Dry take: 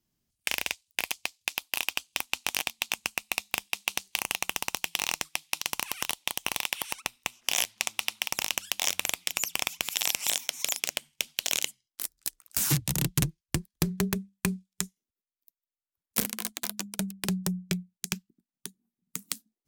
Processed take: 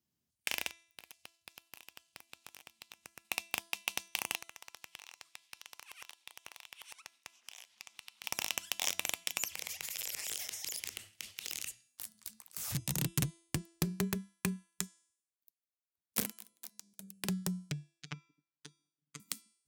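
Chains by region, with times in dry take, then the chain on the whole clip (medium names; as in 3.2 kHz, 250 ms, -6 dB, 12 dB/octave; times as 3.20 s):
0.67–3.25 s: peaking EQ 72 Hz +5.5 dB 0.71 oct + compression 20:1, threshold -42 dBFS
4.35–8.24 s: frequency weighting A + compression 12:1, threshold -40 dBFS
9.48–12.75 s: frequency shift -250 Hz + compression, threshold -29 dBFS + transient shaper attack -3 dB, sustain +11 dB
16.31–17.21 s: treble shelf 4.5 kHz +11.5 dB + hum notches 60/120/180/240/300/360/420/480/540 Hz + slow attack 582 ms
17.71–19.20 s: low-pass 6.1 kHz + low-pass that closes with the level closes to 540 Hz, closed at -30.5 dBFS + robot voice 147 Hz
whole clip: high-pass 69 Hz; de-hum 335.8 Hz, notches 33; trim -6 dB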